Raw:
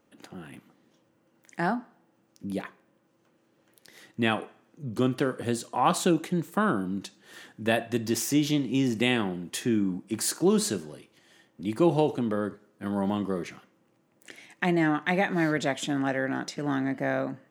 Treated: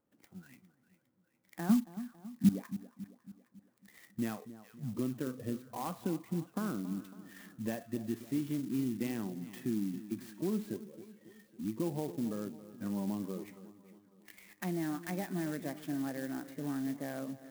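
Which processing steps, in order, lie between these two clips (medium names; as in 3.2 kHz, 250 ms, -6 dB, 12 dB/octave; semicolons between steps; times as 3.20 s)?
compression 2:1, threshold -51 dBFS, peak gain reduction 18.5 dB; tone controls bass +4 dB, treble -15 dB; spectral noise reduction 15 dB; dynamic bell 240 Hz, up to +6 dB, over -53 dBFS, Q 1.2; 1.69–2.49 s: small resonant body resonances 200/1100 Hz, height 17 dB, ringing for 50 ms; on a send: two-band feedback delay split 1.4 kHz, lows 276 ms, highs 406 ms, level -14.5 dB; on the sum: sampling jitter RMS 0.056 ms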